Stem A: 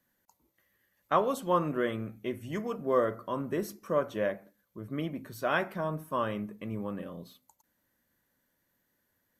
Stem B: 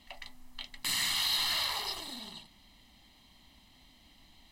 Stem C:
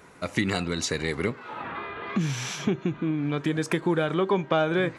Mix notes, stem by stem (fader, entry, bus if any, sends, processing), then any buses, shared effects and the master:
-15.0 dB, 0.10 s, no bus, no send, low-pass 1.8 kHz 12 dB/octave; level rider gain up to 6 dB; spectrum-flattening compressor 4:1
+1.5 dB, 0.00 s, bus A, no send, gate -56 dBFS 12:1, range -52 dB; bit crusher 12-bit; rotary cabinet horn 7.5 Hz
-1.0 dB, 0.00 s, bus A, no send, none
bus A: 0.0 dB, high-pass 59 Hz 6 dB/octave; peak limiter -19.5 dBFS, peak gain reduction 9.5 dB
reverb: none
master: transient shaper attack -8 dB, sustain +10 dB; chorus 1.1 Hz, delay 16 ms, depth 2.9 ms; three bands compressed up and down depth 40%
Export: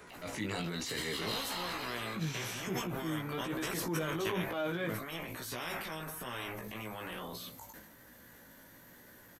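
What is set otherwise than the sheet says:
stem A: missing low-pass 1.8 kHz 12 dB/octave; stem B +1.5 dB -> -5.0 dB; stem C -1.0 dB -> -7.5 dB

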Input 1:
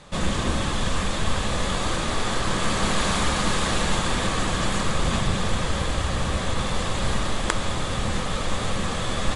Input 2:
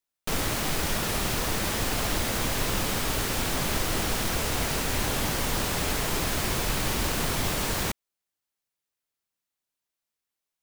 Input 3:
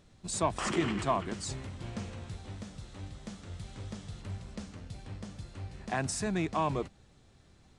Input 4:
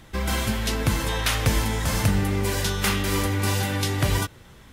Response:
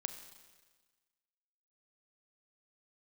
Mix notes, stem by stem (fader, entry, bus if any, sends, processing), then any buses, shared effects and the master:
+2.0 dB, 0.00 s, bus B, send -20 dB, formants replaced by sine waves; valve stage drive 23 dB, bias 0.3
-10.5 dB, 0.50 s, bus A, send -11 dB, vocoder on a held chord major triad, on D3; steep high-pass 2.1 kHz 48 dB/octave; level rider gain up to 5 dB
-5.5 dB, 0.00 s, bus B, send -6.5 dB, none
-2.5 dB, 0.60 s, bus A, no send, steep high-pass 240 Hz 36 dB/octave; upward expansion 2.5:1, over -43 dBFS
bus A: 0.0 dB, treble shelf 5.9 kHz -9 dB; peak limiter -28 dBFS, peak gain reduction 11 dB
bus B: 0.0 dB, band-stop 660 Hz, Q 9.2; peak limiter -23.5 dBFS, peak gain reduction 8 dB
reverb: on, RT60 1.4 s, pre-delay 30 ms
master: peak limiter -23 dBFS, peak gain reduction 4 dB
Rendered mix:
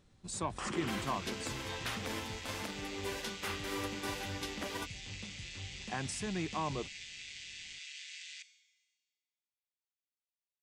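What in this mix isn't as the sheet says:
stem 1: muted; stem 3: send off; reverb return +8.5 dB

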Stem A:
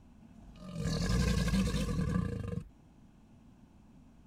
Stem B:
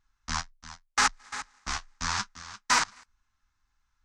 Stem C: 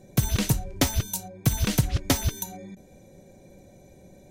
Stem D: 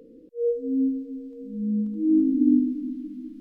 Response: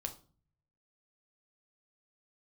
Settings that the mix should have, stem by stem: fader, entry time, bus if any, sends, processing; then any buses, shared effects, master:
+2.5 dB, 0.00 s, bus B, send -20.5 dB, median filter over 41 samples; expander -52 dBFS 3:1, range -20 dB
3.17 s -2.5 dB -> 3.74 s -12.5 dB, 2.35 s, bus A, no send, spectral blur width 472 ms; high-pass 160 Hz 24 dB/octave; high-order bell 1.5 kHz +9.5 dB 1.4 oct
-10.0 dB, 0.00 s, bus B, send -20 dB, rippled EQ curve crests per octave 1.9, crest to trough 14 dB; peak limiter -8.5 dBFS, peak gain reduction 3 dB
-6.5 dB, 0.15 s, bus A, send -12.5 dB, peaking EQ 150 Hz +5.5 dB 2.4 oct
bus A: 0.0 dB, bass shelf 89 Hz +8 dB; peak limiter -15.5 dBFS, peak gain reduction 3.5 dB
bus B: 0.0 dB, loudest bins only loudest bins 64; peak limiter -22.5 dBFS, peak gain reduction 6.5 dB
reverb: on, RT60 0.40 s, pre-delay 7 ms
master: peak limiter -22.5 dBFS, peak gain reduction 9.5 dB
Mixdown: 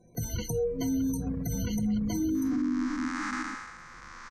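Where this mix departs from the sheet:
stem A +2.5 dB -> -5.0 dB; stem B: missing high-pass 160 Hz 24 dB/octave; stem C: send off

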